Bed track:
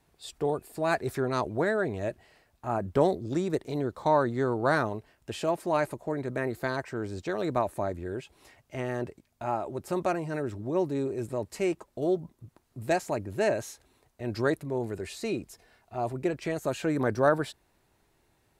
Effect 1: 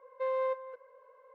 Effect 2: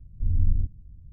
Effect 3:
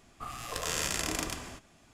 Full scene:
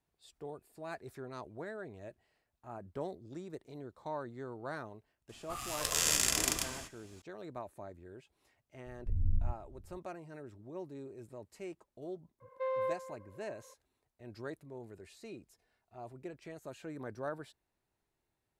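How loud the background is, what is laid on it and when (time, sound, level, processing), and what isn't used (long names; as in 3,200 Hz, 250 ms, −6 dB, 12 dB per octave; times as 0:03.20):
bed track −16.5 dB
0:05.29: mix in 3 −4 dB + high-shelf EQ 3,000 Hz +10 dB
0:08.86: mix in 2 −9 dB
0:12.40: mix in 1 −3 dB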